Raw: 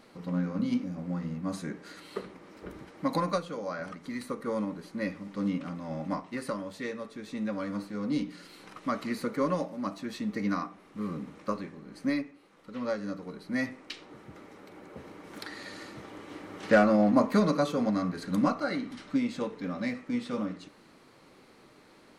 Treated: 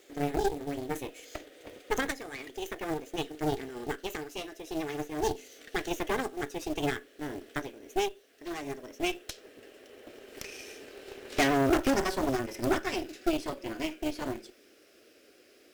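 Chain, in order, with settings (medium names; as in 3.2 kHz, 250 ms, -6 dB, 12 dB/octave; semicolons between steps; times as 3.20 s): gliding tape speed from 162% -> 120%; high-pass 150 Hz 6 dB/octave; static phaser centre 390 Hz, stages 4; companded quantiser 6-bit; Chebyshev shaper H 8 -13 dB, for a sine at -13.5 dBFS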